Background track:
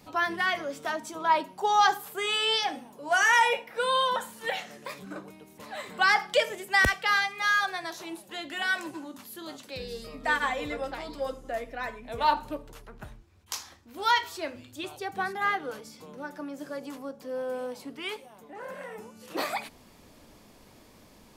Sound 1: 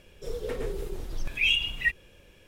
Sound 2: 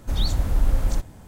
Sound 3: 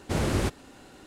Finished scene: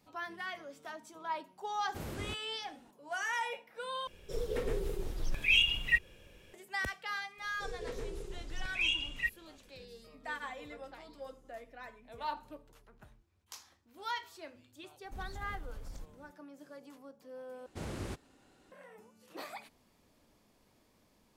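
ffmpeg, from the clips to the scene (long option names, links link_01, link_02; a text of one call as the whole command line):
ffmpeg -i bed.wav -i cue0.wav -i cue1.wav -i cue2.wav -filter_complex "[3:a]asplit=2[link_01][link_02];[1:a]asplit=2[link_03][link_04];[0:a]volume=-14dB[link_05];[link_04]lowpass=frequency=7500:width_type=q:width=1.7[link_06];[2:a]acompressor=threshold=-22dB:ratio=6:attack=3.2:release=140:knee=1:detection=peak[link_07];[link_05]asplit=3[link_08][link_09][link_10];[link_08]atrim=end=4.074[link_11];[link_03]atrim=end=2.47,asetpts=PTS-STARTPTS,volume=-2dB[link_12];[link_09]atrim=start=6.536:end=17.664[link_13];[link_02]atrim=end=1.06,asetpts=PTS-STARTPTS,volume=-14.5dB[link_14];[link_10]atrim=start=18.716[link_15];[link_01]atrim=end=1.06,asetpts=PTS-STARTPTS,volume=-15.5dB,afade=type=in:duration=0.004:curve=hsin,afade=type=out:start_time=1.056:duration=0.004:curve=hsin,adelay=1850[link_16];[link_06]atrim=end=2.47,asetpts=PTS-STARTPTS,volume=-8.5dB,afade=type=in:duration=0.004:curve=hsin,afade=type=out:start_time=2.466:duration=0.004:curve=hsin,adelay=325458S[link_17];[link_07]atrim=end=1.27,asetpts=PTS-STARTPTS,volume=-18dB,afade=type=in:duration=0.004:curve=hsin,afade=type=out:start_time=1.266:duration=0.004:curve=hsin,adelay=15040[link_18];[link_11][link_12]acrossfade=duration=0.004:curve1=hsin:curve2=hsin[link_19];[link_19][link_13]acrossfade=duration=0.004:curve1=hsin:curve2=hsin[link_20];[link_20][link_14]acrossfade=duration=0.004:curve1=hsin:curve2=hsin[link_21];[link_21][link_15]acrossfade=duration=0.004:curve1=hsin:curve2=hsin[link_22];[link_22][link_16][link_17][link_18]amix=inputs=4:normalize=0" out.wav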